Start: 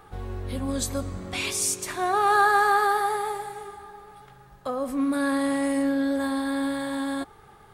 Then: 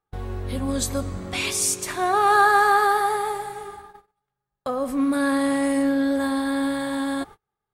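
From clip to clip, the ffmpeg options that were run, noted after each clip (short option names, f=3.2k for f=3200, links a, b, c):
-af "agate=range=-36dB:threshold=-42dB:ratio=16:detection=peak,volume=3dB"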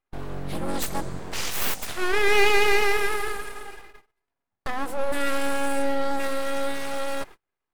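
-af "aeval=exprs='abs(val(0))':c=same"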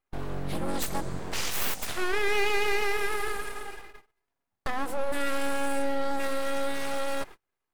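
-af "acompressor=threshold=-25dB:ratio=2"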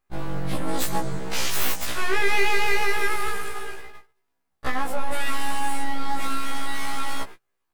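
-af "afftfilt=real='re*1.73*eq(mod(b,3),0)':imag='im*1.73*eq(mod(b,3),0)':win_size=2048:overlap=0.75,volume=7dB"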